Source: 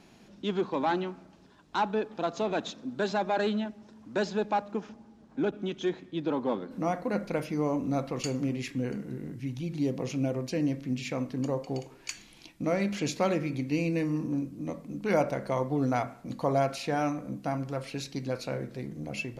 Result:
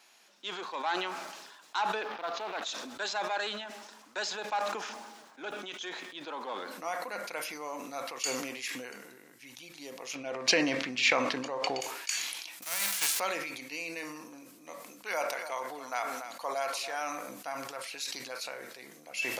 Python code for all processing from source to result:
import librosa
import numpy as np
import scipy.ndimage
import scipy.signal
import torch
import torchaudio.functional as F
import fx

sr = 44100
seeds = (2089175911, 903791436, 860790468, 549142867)

y = fx.chain(x, sr, fx.quant_float(bits=2),
    fx.air_absorb(metres=280.0),
    fx.doppler_dist(depth_ms=0.17), at=(2.02, 2.62))
y = fx.chain(y, sr, fx.lowpass(hz=4000.0, slope=12),
    fx.low_shelf(hz=130.0, db=6.5),
    fx.env_flatten(amount_pct=100), at=(10.15, 11.81))
y = fx.envelope_flatten(y, sr, power=0.3, at=(12.62, 13.18), fade=0.02)
y = fx.peak_eq(y, sr, hz=160.0, db=6.0, octaves=0.74, at=(12.62, 13.18), fade=0.02)
y = fx.auto_swell(y, sr, attack_ms=290.0, at=(12.62, 13.18), fade=0.02)
y = fx.chain(y, sr, fx.low_shelf(hz=140.0, db=-12.0),
    fx.echo_single(ms=287, db=-12.5), at=(14.83, 17.01))
y = scipy.signal.sosfilt(scipy.signal.butter(2, 960.0, 'highpass', fs=sr, output='sos'), y)
y = fx.high_shelf(y, sr, hz=7400.0, db=9.0)
y = fx.sustainer(y, sr, db_per_s=38.0)